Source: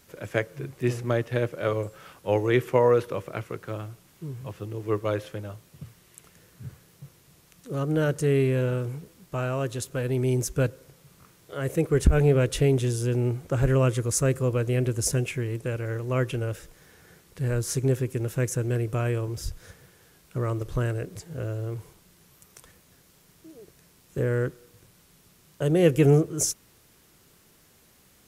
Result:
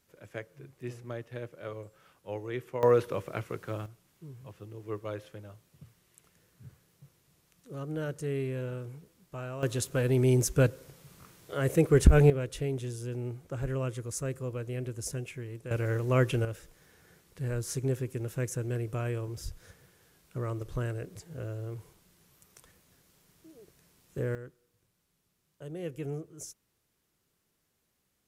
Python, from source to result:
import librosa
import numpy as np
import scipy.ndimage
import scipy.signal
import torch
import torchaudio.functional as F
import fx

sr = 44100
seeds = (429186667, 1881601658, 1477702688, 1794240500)

y = fx.gain(x, sr, db=fx.steps((0.0, -14.0), (2.83, -2.5), (3.86, -10.5), (9.63, 0.5), (12.3, -11.0), (15.71, 0.5), (16.45, -6.5), (24.35, -18.5)))